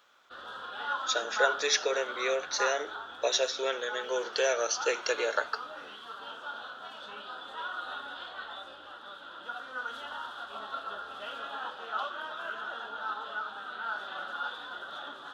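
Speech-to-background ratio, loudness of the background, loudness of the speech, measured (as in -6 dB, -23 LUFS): 7.5 dB, -38.0 LUFS, -30.5 LUFS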